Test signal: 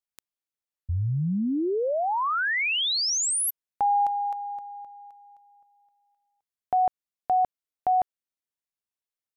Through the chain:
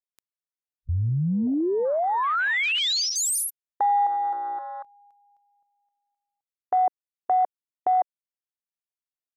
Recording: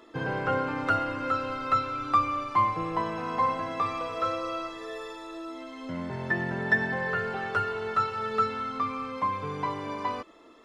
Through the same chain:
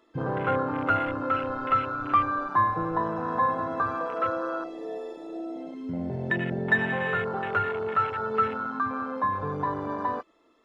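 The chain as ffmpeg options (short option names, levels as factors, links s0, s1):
-filter_complex "[0:a]asplit=2[s0][s1];[s1]acompressor=threshold=0.0141:ratio=16:attack=4.3:release=47:knee=6:detection=peak,volume=1.12[s2];[s0][s2]amix=inputs=2:normalize=0,afwtdn=0.0447"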